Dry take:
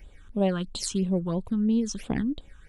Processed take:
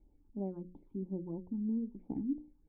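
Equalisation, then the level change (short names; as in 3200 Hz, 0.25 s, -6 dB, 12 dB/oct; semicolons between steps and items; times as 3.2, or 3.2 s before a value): vocal tract filter u; notches 60/120/180/240/300/360/420/480/540 Hz; -2.0 dB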